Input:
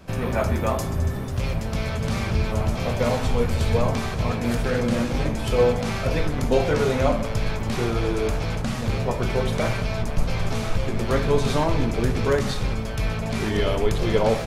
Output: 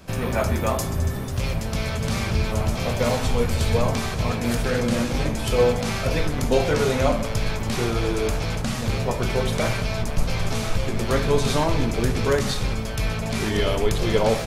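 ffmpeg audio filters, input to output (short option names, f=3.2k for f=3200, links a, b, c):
-af "highshelf=f=3.5k:g=6.5"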